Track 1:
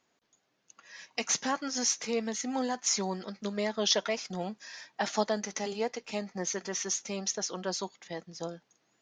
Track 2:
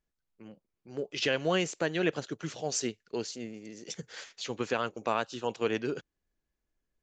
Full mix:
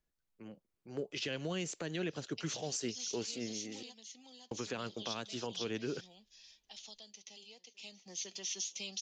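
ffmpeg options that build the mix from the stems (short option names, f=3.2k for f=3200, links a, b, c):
-filter_complex "[0:a]acrossover=split=5400[a][b];[b]acompressor=threshold=-40dB:ratio=4:attack=1:release=60[c];[a][c]amix=inputs=2:normalize=0,highshelf=f=2.2k:t=q:w=3:g=11.5,acrossover=split=120|3000[d][e][f];[e]acompressor=threshold=-32dB:ratio=4[g];[d][g][f]amix=inputs=3:normalize=0,adelay=1200,volume=-9.5dB,afade=t=in:st=7.18:d=0.79:silence=0.251189,asplit=2[h][i];[i]volume=-3.5dB[j];[1:a]volume=-1dB,asplit=3[k][l][m];[k]atrim=end=3.83,asetpts=PTS-STARTPTS,afade=t=out:st=3.826:d=0.004:c=hsin[n];[l]atrim=start=3.83:end=4.51,asetpts=PTS-STARTPTS,volume=0[o];[m]atrim=start=4.51,asetpts=PTS-STARTPTS,afade=t=in:d=0.004:c=hsin[p];[n][o][p]concat=n=3:v=0:a=1,asplit=2[q][r];[r]apad=whole_len=450547[s];[h][s]sidechaingate=range=-33dB:threshold=-59dB:ratio=16:detection=peak[t];[j]aecho=0:1:504:1[u];[t][q][u]amix=inputs=3:normalize=0,acrossover=split=310|3000[v][w][x];[w]acompressor=threshold=-37dB:ratio=6[y];[v][y][x]amix=inputs=3:normalize=0,alimiter=level_in=4dB:limit=-24dB:level=0:latency=1:release=115,volume=-4dB"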